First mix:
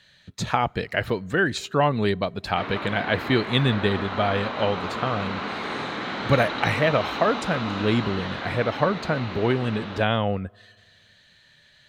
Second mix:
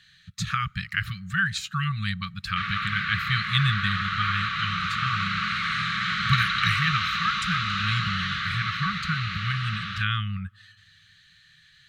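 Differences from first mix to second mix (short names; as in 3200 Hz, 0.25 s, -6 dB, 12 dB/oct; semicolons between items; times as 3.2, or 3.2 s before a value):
background +6.5 dB; master: add brick-wall FIR band-stop 200–1100 Hz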